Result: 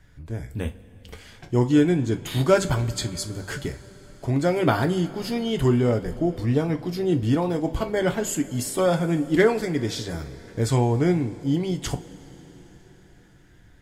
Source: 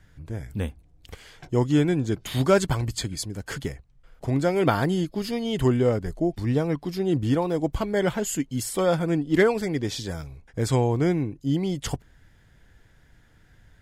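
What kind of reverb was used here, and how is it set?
two-slope reverb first 0.23 s, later 4.8 s, from -22 dB, DRR 5.5 dB

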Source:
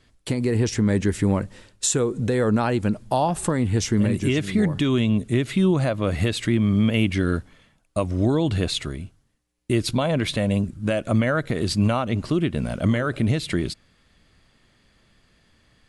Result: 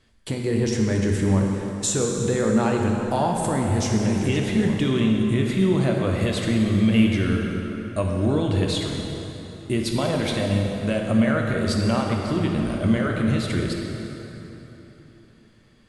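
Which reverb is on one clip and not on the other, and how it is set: plate-style reverb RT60 3.7 s, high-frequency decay 0.7×, DRR 0 dB; gain -3 dB

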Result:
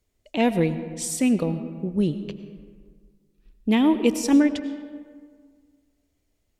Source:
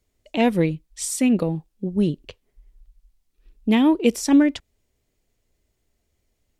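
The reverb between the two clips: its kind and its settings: digital reverb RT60 1.8 s, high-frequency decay 0.5×, pre-delay 60 ms, DRR 11 dB; gain -2 dB

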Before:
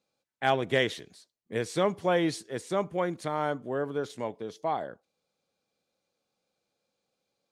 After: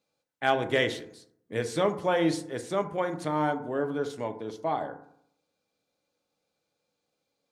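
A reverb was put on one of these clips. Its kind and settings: FDN reverb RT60 0.68 s, low-frequency decay 1.1×, high-frequency decay 0.35×, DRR 6.5 dB

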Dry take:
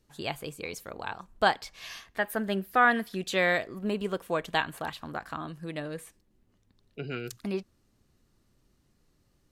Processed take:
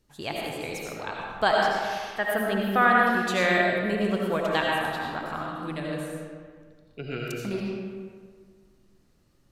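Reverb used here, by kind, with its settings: digital reverb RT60 1.8 s, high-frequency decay 0.6×, pre-delay 45 ms, DRR -2.5 dB

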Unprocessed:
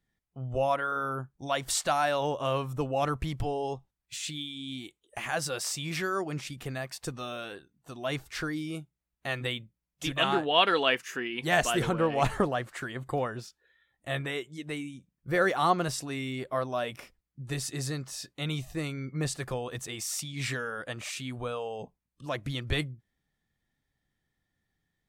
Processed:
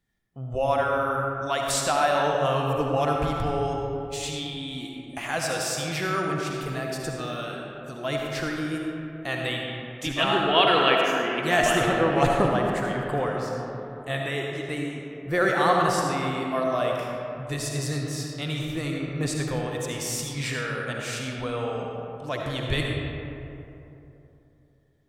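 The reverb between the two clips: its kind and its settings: digital reverb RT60 3.1 s, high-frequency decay 0.4×, pre-delay 30 ms, DRR -0.5 dB; gain +2 dB

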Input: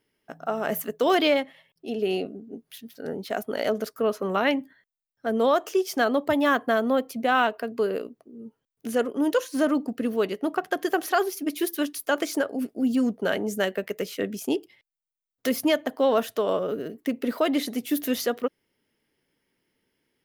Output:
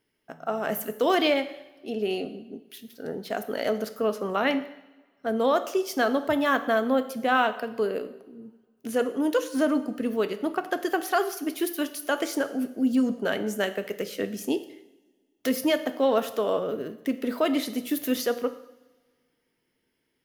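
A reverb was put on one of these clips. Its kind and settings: two-slope reverb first 0.76 s, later 2 s, from -19 dB, DRR 9.5 dB; gain -1.5 dB

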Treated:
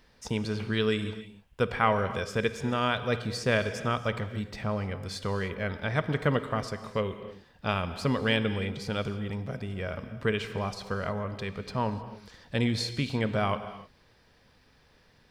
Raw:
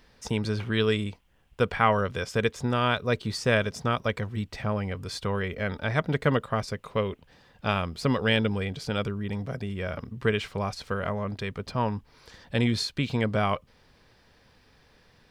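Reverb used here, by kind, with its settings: non-linear reverb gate 0.33 s flat, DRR 10.5 dB; gain -2.5 dB

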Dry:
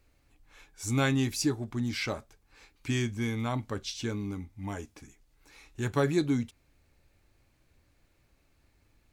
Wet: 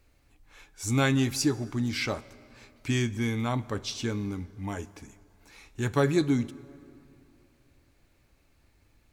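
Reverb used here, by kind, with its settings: plate-style reverb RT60 2.8 s, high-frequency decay 0.6×, DRR 18 dB; gain +2.5 dB

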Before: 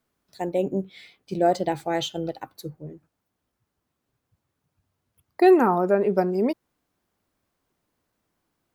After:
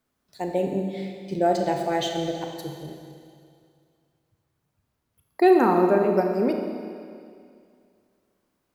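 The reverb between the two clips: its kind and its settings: Schroeder reverb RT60 2.3 s, combs from 28 ms, DRR 3 dB; gain -1 dB

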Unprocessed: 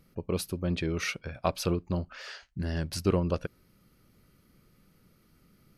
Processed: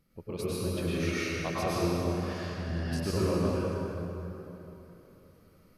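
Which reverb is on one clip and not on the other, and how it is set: plate-style reverb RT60 3.5 s, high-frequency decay 0.6×, pre-delay 90 ms, DRR -9.5 dB; gain -9 dB

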